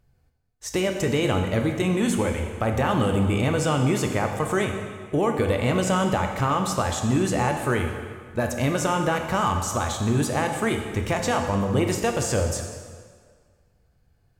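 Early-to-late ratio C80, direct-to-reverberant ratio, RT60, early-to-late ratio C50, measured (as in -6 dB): 7.0 dB, 3.5 dB, 1.8 s, 5.5 dB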